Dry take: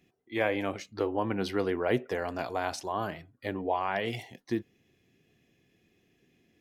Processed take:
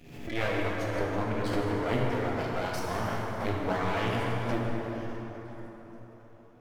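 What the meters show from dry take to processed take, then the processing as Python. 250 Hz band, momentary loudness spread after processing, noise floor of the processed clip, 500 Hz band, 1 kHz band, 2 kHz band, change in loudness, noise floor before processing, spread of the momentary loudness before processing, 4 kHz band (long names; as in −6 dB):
+1.5 dB, 14 LU, −52 dBFS, 0.0 dB, +1.0 dB, +1.5 dB, +1.0 dB, −71 dBFS, 7 LU, +1.5 dB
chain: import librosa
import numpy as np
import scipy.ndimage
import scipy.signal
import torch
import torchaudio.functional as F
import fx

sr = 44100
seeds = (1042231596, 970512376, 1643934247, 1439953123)

y = fx.dereverb_blind(x, sr, rt60_s=1.6)
y = fx.peak_eq(y, sr, hz=67.0, db=10.0, octaves=2.8)
y = fx.rider(y, sr, range_db=10, speed_s=2.0)
y = fx.notch_comb(y, sr, f0_hz=190.0)
y = fx.echo_stepped(y, sr, ms=481, hz=1300.0, octaves=1.4, feedback_pct=70, wet_db=-11.5)
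y = np.maximum(y, 0.0)
y = fx.rev_plate(y, sr, seeds[0], rt60_s=4.7, hf_ratio=0.5, predelay_ms=0, drr_db=-4.0)
y = fx.pre_swell(y, sr, db_per_s=68.0)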